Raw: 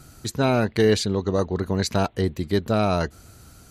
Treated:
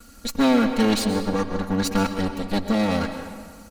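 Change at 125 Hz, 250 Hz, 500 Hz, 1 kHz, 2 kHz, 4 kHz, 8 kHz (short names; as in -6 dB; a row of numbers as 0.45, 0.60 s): -5.5, +4.0, -3.5, +0.5, +1.0, +1.0, +1.0 dB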